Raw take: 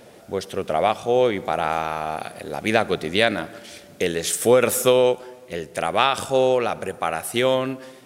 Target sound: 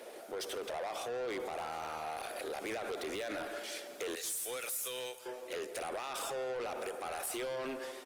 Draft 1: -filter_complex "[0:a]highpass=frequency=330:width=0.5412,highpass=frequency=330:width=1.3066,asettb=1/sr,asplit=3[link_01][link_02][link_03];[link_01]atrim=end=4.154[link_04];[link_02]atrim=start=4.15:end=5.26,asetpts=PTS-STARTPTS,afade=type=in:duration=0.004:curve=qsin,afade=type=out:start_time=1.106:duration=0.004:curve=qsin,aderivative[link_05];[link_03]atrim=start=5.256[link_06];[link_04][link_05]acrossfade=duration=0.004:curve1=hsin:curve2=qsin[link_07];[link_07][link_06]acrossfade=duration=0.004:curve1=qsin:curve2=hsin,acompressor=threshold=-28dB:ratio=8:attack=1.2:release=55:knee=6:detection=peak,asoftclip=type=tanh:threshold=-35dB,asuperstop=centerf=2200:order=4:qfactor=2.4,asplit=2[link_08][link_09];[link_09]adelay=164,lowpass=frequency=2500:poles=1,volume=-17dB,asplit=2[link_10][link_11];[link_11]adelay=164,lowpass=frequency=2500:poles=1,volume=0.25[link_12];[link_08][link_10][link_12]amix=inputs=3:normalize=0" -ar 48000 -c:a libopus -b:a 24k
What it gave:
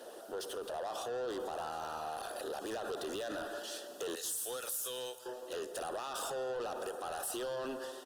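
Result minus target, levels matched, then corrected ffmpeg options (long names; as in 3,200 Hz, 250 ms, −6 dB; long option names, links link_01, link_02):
2,000 Hz band −3.5 dB
-filter_complex "[0:a]highpass=frequency=330:width=0.5412,highpass=frequency=330:width=1.3066,asettb=1/sr,asplit=3[link_01][link_02][link_03];[link_01]atrim=end=4.154[link_04];[link_02]atrim=start=4.15:end=5.26,asetpts=PTS-STARTPTS,afade=type=in:duration=0.004:curve=qsin,afade=type=out:start_time=1.106:duration=0.004:curve=qsin,aderivative[link_05];[link_03]atrim=start=5.256[link_06];[link_04][link_05]acrossfade=duration=0.004:curve1=hsin:curve2=qsin[link_07];[link_07][link_06]acrossfade=duration=0.004:curve1=qsin:curve2=hsin,acompressor=threshold=-28dB:ratio=8:attack=1.2:release=55:knee=6:detection=peak,asoftclip=type=tanh:threshold=-35dB,asplit=2[link_08][link_09];[link_09]adelay=164,lowpass=frequency=2500:poles=1,volume=-17dB,asplit=2[link_10][link_11];[link_11]adelay=164,lowpass=frequency=2500:poles=1,volume=0.25[link_12];[link_08][link_10][link_12]amix=inputs=3:normalize=0" -ar 48000 -c:a libopus -b:a 24k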